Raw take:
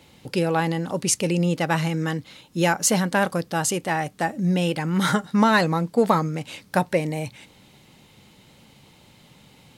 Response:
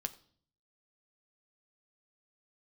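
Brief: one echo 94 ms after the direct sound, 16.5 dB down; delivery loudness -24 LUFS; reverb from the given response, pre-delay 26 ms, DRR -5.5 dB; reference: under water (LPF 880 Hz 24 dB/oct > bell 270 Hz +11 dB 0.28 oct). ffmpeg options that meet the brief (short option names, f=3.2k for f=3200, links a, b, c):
-filter_complex "[0:a]aecho=1:1:94:0.15,asplit=2[a][b];[1:a]atrim=start_sample=2205,adelay=26[c];[b][c]afir=irnorm=-1:irlink=0,volume=6dB[d];[a][d]amix=inputs=2:normalize=0,lowpass=f=880:w=0.5412,lowpass=f=880:w=1.3066,equalizer=f=270:t=o:w=0.28:g=11,volume=-6.5dB"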